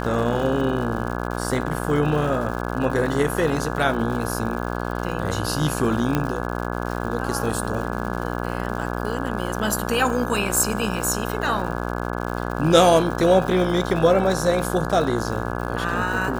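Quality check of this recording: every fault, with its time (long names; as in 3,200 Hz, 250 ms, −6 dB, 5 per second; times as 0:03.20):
mains buzz 60 Hz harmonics 28 −27 dBFS
surface crackle 170 per second −30 dBFS
0:06.15: click −8 dBFS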